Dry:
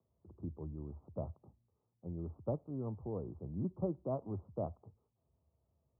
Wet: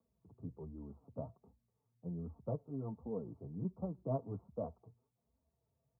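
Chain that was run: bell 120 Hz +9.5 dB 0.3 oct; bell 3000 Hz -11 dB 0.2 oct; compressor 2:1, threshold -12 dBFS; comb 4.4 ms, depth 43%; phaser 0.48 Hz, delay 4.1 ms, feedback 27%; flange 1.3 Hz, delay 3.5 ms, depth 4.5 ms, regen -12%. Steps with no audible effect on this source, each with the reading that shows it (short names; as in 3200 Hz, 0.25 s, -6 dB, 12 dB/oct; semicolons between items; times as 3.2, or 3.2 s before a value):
bell 3000 Hz: input band ends at 810 Hz; compressor, threshold -12 dBFS: input peak -23.0 dBFS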